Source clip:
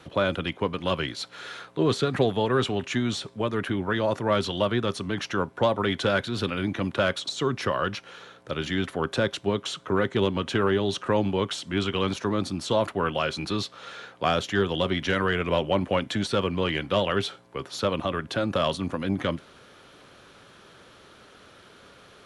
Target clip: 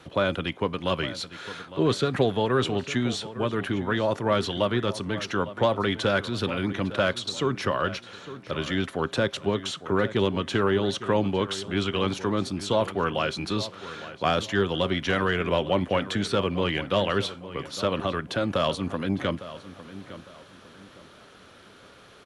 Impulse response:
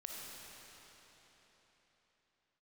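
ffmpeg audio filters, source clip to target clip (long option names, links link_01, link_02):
-filter_complex "[0:a]asplit=2[link_01][link_02];[link_02]adelay=856,lowpass=frequency=3600:poles=1,volume=-14.5dB,asplit=2[link_03][link_04];[link_04]adelay=856,lowpass=frequency=3600:poles=1,volume=0.33,asplit=2[link_05][link_06];[link_06]adelay=856,lowpass=frequency=3600:poles=1,volume=0.33[link_07];[link_01][link_03][link_05][link_07]amix=inputs=4:normalize=0"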